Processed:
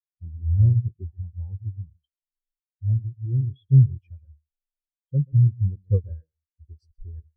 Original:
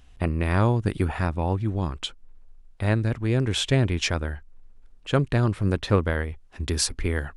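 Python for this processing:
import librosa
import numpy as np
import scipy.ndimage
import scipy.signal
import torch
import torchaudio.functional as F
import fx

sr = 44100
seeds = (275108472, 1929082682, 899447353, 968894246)

y = x + 10.0 ** (-7.5 / 20.0) * np.pad(x, (int(133 * sr / 1000.0), 0))[:len(x)]
y = fx.spectral_expand(y, sr, expansion=4.0)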